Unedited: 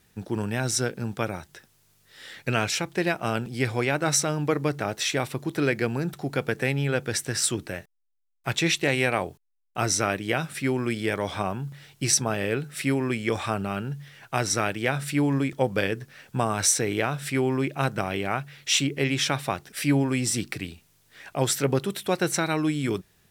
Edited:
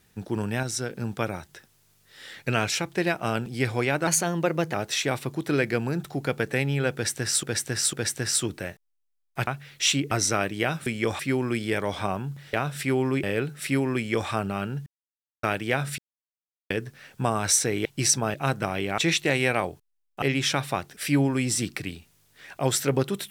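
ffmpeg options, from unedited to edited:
-filter_complex "[0:a]asplit=21[s0][s1][s2][s3][s4][s5][s6][s7][s8][s9][s10][s11][s12][s13][s14][s15][s16][s17][s18][s19][s20];[s0]atrim=end=0.632[s21];[s1]atrim=start=0.628:end=0.902,asetpts=PTS-STARTPTS,volume=0.596[s22];[s2]atrim=start=0.898:end=4.074[s23];[s3]atrim=start=4.07:end=4.83,asetpts=PTS-STARTPTS,asetrate=49833,aresample=44100,atrim=end_sample=29660,asetpts=PTS-STARTPTS[s24];[s4]atrim=start=4.826:end=7.522[s25];[s5]atrim=start=7.018:end=7.522[s26];[s6]atrim=start=7.018:end=8.562[s27];[s7]atrim=start=18.338:end=18.982[s28];[s8]atrim=start=9.798:end=10.552[s29];[s9]atrim=start=13.108:end=13.442[s30];[s10]atrim=start=10.548:end=11.892[s31];[s11]atrim=start=16.998:end=17.702[s32];[s12]atrim=start=12.378:end=14.01,asetpts=PTS-STARTPTS,afade=t=out:st=1.628:d=0.004:c=hsin[s33];[s13]atrim=start=14.01:end=14.58,asetpts=PTS-STARTPTS,volume=0[s34];[s14]atrim=start=14.58:end=15.13,asetpts=PTS-STARTPTS,afade=t=in:d=0.004:c=hsin,afade=t=out:st=0.546:d=0.004:c=hsin[s35];[s15]atrim=start=15.13:end=15.85,asetpts=PTS-STARTPTS,volume=0[s36];[s16]atrim=start=15.85:end=17.002,asetpts=PTS-STARTPTS,afade=t=in:d=0.004:c=hsin[s37];[s17]atrim=start=11.888:end=12.382[s38];[s18]atrim=start=17.698:end=18.342[s39];[s19]atrim=start=8.558:end=9.802[s40];[s20]atrim=start=18.978[s41];[s21][s22]acrossfade=d=0.004:c1=hsin:c2=hsin[s42];[s42][s23]acrossfade=d=0.004:c1=hsin:c2=hsin[s43];[s43][s24]acrossfade=d=0.004:c1=hsin:c2=hsin[s44];[s44][s25]acrossfade=d=0.004:c1=hsin:c2=hsin[s45];[s45][s26]acrossfade=d=0.004:c1=hsin:c2=hsin[s46];[s46][s27]acrossfade=d=0.004:c1=hsin:c2=hsin[s47];[s47][s28]acrossfade=d=0.004:c1=hsin:c2=hsin[s48];[s48][s29]acrossfade=d=0.004:c1=hsin:c2=hsin[s49];[s49][s30]acrossfade=d=0.004:c1=hsin:c2=hsin[s50];[s50][s31]acrossfade=d=0.004:c1=hsin:c2=hsin[s51];[s51][s32]acrossfade=d=0.004:c1=hsin:c2=hsin[s52];[s33][s34][s35][s36][s37]concat=n=5:v=0:a=1[s53];[s52][s53]acrossfade=d=0.004:c1=hsin:c2=hsin[s54];[s54][s38]acrossfade=d=0.004:c1=hsin:c2=hsin[s55];[s55][s39]acrossfade=d=0.004:c1=hsin:c2=hsin[s56];[s56][s40]acrossfade=d=0.004:c1=hsin:c2=hsin[s57];[s57][s41]acrossfade=d=0.004:c1=hsin:c2=hsin"

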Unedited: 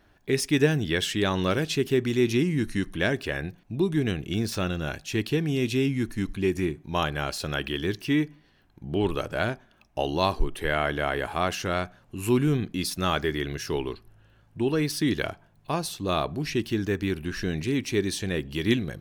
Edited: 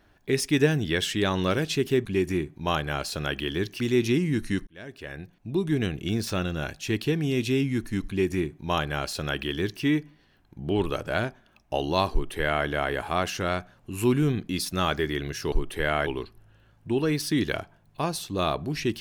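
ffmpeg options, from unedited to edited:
-filter_complex "[0:a]asplit=6[s0][s1][s2][s3][s4][s5];[s0]atrim=end=2.052[s6];[s1]atrim=start=6.328:end=8.082[s7];[s2]atrim=start=2.048:end=2.92,asetpts=PTS-STARTPTS,afade=t=out:st=0.868:d=0.004:c=hsin[s8];[s3]atrim=start=2.92:end=13.772,asetpts=PTS-STARTPTS,afade=t=in:d=1.09[s9];[s4]atrim=start=10.368:end=10.922[s10];[s5]atrim=start=13.768[s11];[s6][s7]acrossfade=d=0.004:c1=hsin:c2=hsin[s12];[s8][s9]concat=n=2:v=0:a=1[s13];[s12][s13]acrossfade=d=0.004:c1=hsin:c2=hsin[s14];[s14][s10]acrossfade=d=0.004:c1=hsin:c2=hsin[s15];[s15][s11]acrossfade=d=0.004:c1=hsin:c2=hsin"

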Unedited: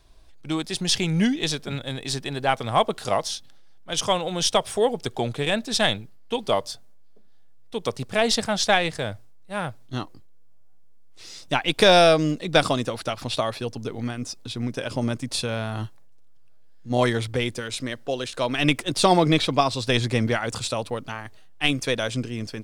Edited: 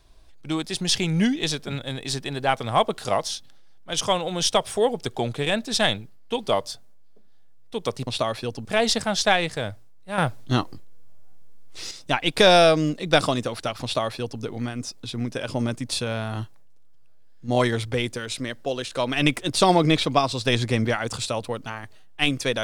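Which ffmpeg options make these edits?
-filter_complex "[0:a]asplit=5[s0][s1][s2][s3][s4];[s0]atrim=end=8.072[s5];[s1]atrim=start=13.248:end=13.832[s6];[s2]atrim=start=8.068:end=9.602[s7];[s3]atrim=start=9.598:end=11.332,asetpts=PTS-STARTPTS,volume=2.51[s8];[s4]atrim=start=11.328[s9];[s5][s6]acrossfade=d=0.004:c1=hsin:c2=hsin[s10];[s10][s7]acrossfade=d=0.004:c1=hsin:c2=hsin[s11];[s11][s8]acrossfade=d=0.004:c1=hsin:c2=hsin[s12];[s12][s9]acrossfade=d=0.004:c1=hsin:c2=hsin"

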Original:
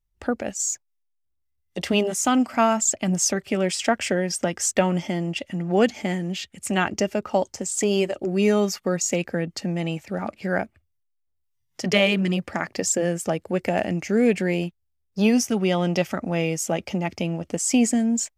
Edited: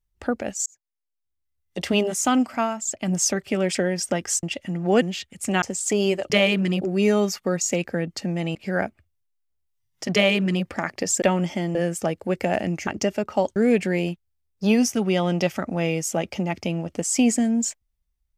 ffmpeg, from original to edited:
-filter_complex "[0:a]asplit=15[s0][s1][s2][s3][s4][s5][s6][s7][s8][s9][s10][s11][s12][s13][s14];[s0]atrim=end=0.66,asetpts=PTS-STARTPTS,afade=t=out:st=0.656:d=0.004:c=hsin[s15];[s1]atrim=start=0.66:end=2.76,asetpts=PTS-STARTPTS,afade=t=in:d=1.12,afade=t=out:st=1.73:d=0.37:silence=0.354813[s16];[s2]atrim=start=2.76:end=2.8,asetpts=PTS-STARTPTS,volume=0.355[s17];[s3]atrim=start=2.8:end=3.752,asetpts=PTS-STARTPTS,afade=t=in:d=0.37:silence=0.354813[s18];[s4]atrim=start=4.068:end=4.752[s19];[s5]atrim=start=5.278:end=5.872[s20];[s6]atrim=start=6.238:end=6.842[s21];[s7]atrim=start=7.528:end=8.212[s22];[s8]atrim=start=11.898:end=12.412[s23];[s9]atrim=start=8.208:end=9.952[s24];[s10]atrim=start=10.318:end=12.992[s25];[s11]atrim=start=4.748:end=5.282[s26];[s12]atrim=start=12.988:end=14.112[s27];[s13]atrim=start=6.838:end=7.532[s28];[s14]atrim=start=14.108[s29];[s15][s16][s17][s18]concat=n=4:v=0:a=1[s30];[s30][s19]acrossfade=d=0.004:c1=hsin:c2=hsin[s31];[s31][s20]acrossfade=d=0.004:c1=hsin:c2=hsin[s32];[s32][s21]acrossfade=d=0.004:c1=hsin:c2=hsin[s33];[s33][s22]acrossfade=d=0.004:c1=hsin:c2=hsin[s34];[s34][s23]acrossfade=d=0.004:c1=hsin:c2=hsin[s35];[s35][s24]acrossfade=d=0.004:c1=hsin:c2=hsin[s36];[s36][s25]acrossfade=d=0.004:c1=hsin:c2=hsin[s37];[s37][s26]acrossfade=d=0.004:c1=hsin:c2=hsin[s38];[s38][s27]acrossfade=d=0.004:c1=hsin:c2=hsin[s39];[s39][s28]acrossfade=d=0.004:c1=hsin:c2=hsin[s40];[s40][s29]acrossfade=d=0.004:c1=hsin:c2=hsin"

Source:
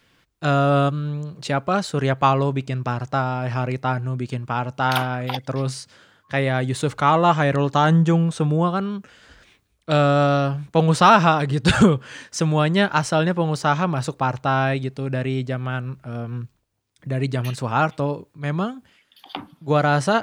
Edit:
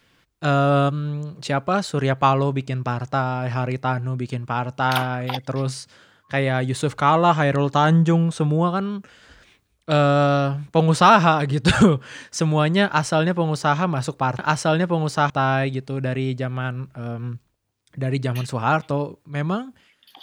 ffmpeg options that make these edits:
-filter_complex "[0:a]asplit=3[s0][s1][s2];[s0]atrim=end=14.392[s3];[s1]atrim=start=12.858:end=13.772[s4];[s2]atrim=start=14.388[s5];[s3][s4]acrossfade=d=0.004:c1=hsin:c2=hsin[s6];[s6][s5]acrossfade=d=0.004:c1=hsin:c2=hsin"

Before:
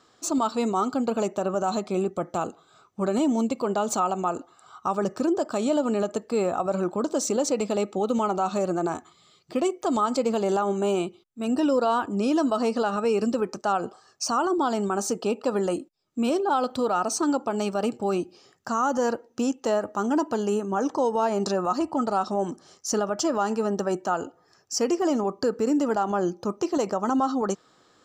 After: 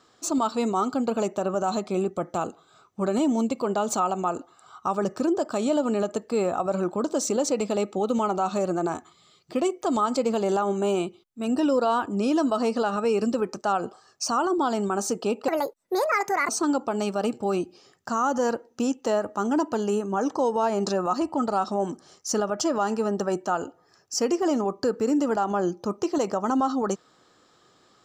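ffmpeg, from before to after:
-filter_complex "[0:a]asplit=3[s0][s1][s2];[s0]atrim=end=15.484[s3];[s1]atrim=start=15.48:end=17.08,asetpts=PTS-STARTPTS,asetrate=70119,aresample=44100,atrim=end_sample=44377,asetpts=PTS-STARTPTS[s4];[s2]atrim=start=17.076[s5];[s3][s4]acrossfade=d=0.004:c1=hsin:c2=hsin[s6];[s6][s5]acrossfade=d=0.004:c1=hsin:c2=hsin"

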